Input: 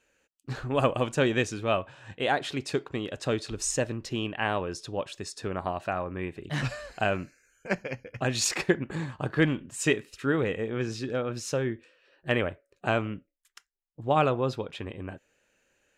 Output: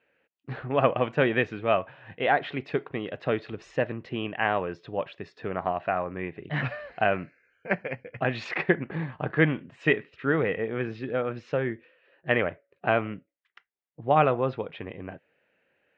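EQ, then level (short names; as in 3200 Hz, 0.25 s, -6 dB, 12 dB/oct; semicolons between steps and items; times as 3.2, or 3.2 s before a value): dynamic EQ 1400 Hz, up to +3 dB, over -38 dBFS, Q 0.91; speaker cabinet 100–3100 Hz, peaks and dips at 160 Hz +4 dB, 470 Hz +3 dB, 700 Hz +5 dB, 2000 Hz +5 dB; -1.0 dB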